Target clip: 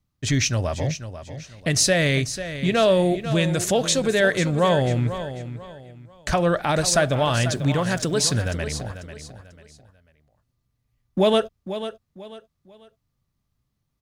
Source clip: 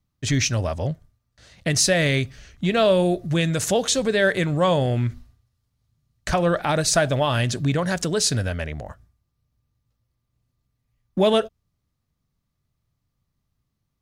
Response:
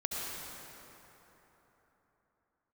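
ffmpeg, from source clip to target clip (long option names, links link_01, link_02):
-filter_complex "[0:a]asettb=1/sr,asplit=3[link_01][link_02][link_03];[link_01]atrim=end=7.384[link_04];[link_02]atrim=start=7.38:end=8.52,asetpts=PTS-STARTPTS,afade=type=in:duration=0.004:curve=qsin,afade=type=out:start_time=1.136:duration=0.004:curve=qsin,aeval=exprs='val(0)*gte(abs(val(0)),0.00562)':channel_layout=same[link_05];[link_03]atrim=start=8.516[link_06];[link_04][link_05]acrossfade=duration=0.004:curve1=hsin:curve2=qsin[link_07];[link_07][link_06]acrossfade=duration=0.004:curve1=qsin:curve2=hsin,aecho=1:1:493|986|1479:0.266|0.0825|0.0256"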